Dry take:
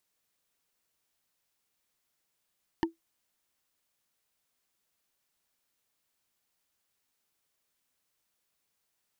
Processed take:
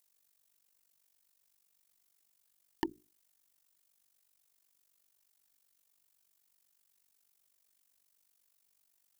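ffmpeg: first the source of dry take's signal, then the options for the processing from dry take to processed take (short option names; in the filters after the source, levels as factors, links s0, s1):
-f lavfi -i "aevalsrc='0.1*pow(10,-3*t/0.14)*sin(2*PI*330*t)+0.0708*pow(10,-3*t/0.041)*sin(2*PI*909.8*t)+0.0501*pow(10,-3*t/0.018)*sin(2*PI*1783.3*t)+0.0355*pow(10,-3*t/0.01)*sin(2*PI*2947.9*t)+0.0251*pow(10,-3*t/0.006)*sin(2*PI*4402.2*t)':d=0.45:s=44100"
-af "highshelf=f=5200:g=11.5,bandreject=f=60:t=h:w=6,bandreject=f=120:t=h:w=6,bandreject=f=180:t=h:w=6,bandreject=f=240:t=h:w=6,bandreject=f=300:t=h:w=6,bandreject=f=360:t=h:w=6,tremolo=f=48:d=0.857"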